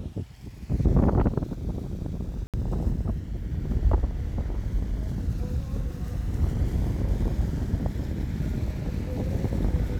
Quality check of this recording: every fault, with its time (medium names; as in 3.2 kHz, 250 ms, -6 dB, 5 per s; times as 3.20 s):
2.47–2.54 s: dropout 67 ms